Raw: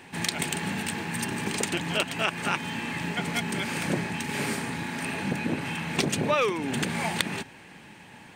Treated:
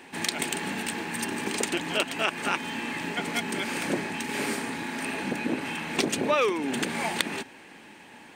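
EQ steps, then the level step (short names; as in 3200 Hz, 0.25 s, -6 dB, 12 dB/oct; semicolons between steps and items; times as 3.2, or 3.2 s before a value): resonant low shelf 200 Hz -8 dB, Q 1.5; 0.0 dB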